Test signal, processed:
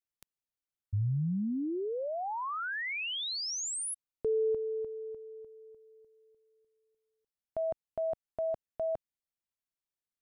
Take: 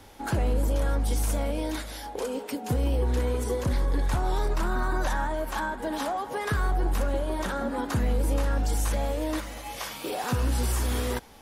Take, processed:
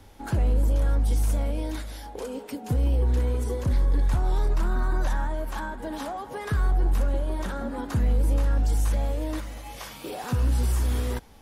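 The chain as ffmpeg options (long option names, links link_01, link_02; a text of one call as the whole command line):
ffmpeg -i in.wav -af "lowshelf=frequency=190:gain=9,volume=-4.5dB" out.wav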